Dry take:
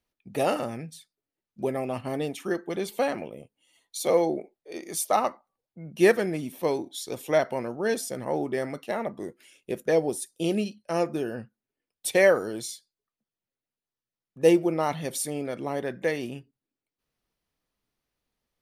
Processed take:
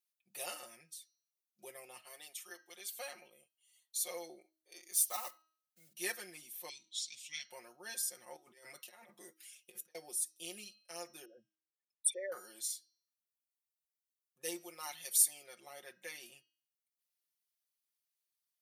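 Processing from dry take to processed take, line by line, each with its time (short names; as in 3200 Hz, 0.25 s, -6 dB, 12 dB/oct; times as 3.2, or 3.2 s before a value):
2.02–2.96 HPF 620 Hz 6 dB/oct
4.93–5.94 block floating point 5-bit
6.69–7.5 EQ curve 120 Hz 0 dB, 260 Hz -6 dB, 400 Hz -24 dB, 640 Hz -29 dB, 1300 Hz -22 dB, 2400 Hz +8 dB, 8000 Hz +1 dB, 11000 Hz -20 dB
8.36–9.95 negative-ratio compressor -34 dBFS, ratio -0.5
11.25–12.32 formant sharpening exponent 3
14.6–15.43 tilt +1.5 dB/oct
whole clip: differentiator; comb 5.6 ms, depth 94%; de-hum 318.6 Hz, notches 20; gain -5 dB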